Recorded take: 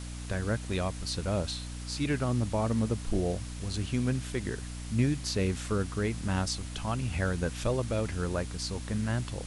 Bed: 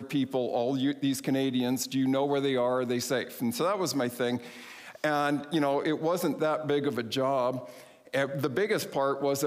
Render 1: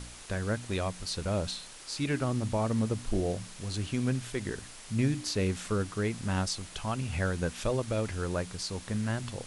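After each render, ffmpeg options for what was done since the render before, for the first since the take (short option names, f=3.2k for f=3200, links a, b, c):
-af "bandreject=f=60:t=h:w=4,bandreject=f=120:t=h:w=4,bandreject=f=180:t=h:w=4,bandreject=f=240:t=h:w=4,bandreject=f=300:t=h:w=4"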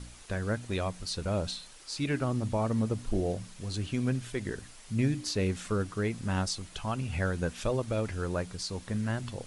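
-af "afftdn=nr=6:nf=-48"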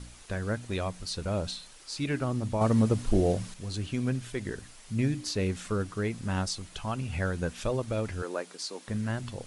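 -filter_complex "[0:a]asettb=1/sr,asplit=3[a][b][c];[a]atrim=end=8.224[d];[b]atrim=start=8.22:end=8.88,asetpts=PTS-STARTPTS,afade=t=in:d=0.004:c=qsin,afade=t=out:st=0.656:d=0.004:c=qsin,highpass=f=270:w=0.5412,highpass=f=270:w=1.3066[e];[c]atrim=start=8.876[f];[d][e]acrossfade=d=0.004:c1=hsin:c2=qsin[g];[g][f]acrossfade=d=0.004:c1=qsin:c2=hsin,asplit=3[h][i][j];[h]atrim=end=2.612[k];[i]atrim=start=2.608:end=3.542,asetpts=PTS-STARTPTS,volume=5.5dB[l];[j]atrim=start=3.538[m];[k][l]acrossfade=d=0.004:c1=hsin:c2=hsin[n];[n][m]acrossfade=d=0.004:c1=hsin:c2=hsin"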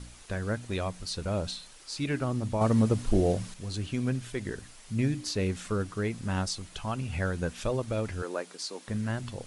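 -af anull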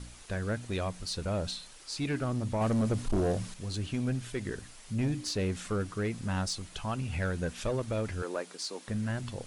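-af "asoftclip=type=tanh:threshold=-23dB"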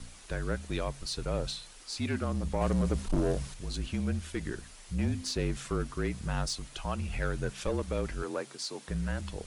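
-af "afreqshift=-42"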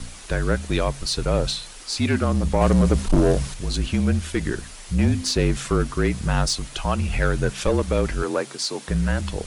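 -af "volume=11dB"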